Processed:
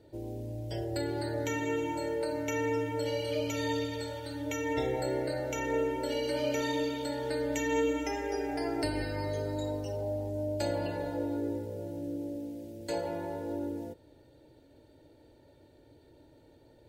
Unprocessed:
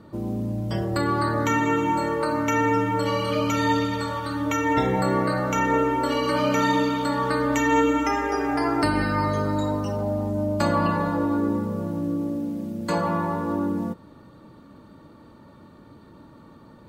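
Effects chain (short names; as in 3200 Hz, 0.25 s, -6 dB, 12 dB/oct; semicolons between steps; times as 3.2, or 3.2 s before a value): fixed phaser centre 480 Hz, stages 4; gain -5.5 dB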